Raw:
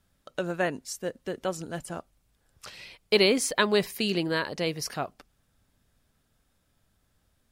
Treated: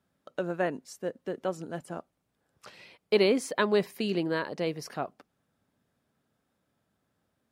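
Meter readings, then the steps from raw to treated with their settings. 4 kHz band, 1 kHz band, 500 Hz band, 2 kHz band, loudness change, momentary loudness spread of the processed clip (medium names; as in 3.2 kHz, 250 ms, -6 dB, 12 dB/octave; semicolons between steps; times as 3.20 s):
-8.0 dB, -2.0 dB, -0.5 dB, -5.0 dB, -2.5 dB, 14 LU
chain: high-pass 160 Hz 12 dB/octave; treble shelf 2.1 kHz -11 dB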